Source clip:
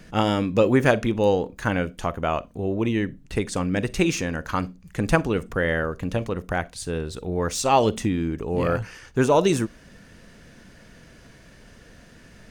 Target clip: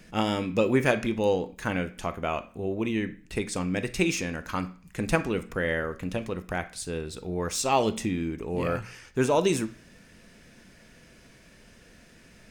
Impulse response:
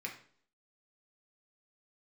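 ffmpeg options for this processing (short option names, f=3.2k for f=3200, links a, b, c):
-filter_complex "[0:a]asplit=2[a][b];[1:a]atrim=start_sample=2205,highshelf=f=2.3k:g=11.5[c];[b][c]afir=irnorm=-1:irlink=0,volume=-9.5dB[d];[a][d]amix=inputs=2:normalize=0,volume=-5.5dB"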